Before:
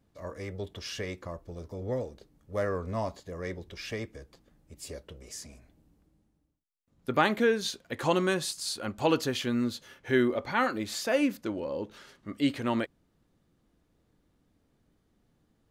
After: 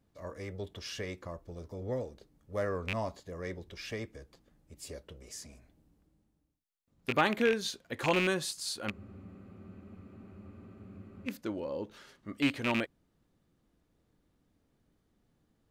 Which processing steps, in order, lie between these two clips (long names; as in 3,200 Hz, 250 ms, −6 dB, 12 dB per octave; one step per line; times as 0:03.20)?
loose part that buzzes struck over −33 dBFS, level −17 dBFS
frozen spectrum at 0:08.93, 2.35 s
level −3 dB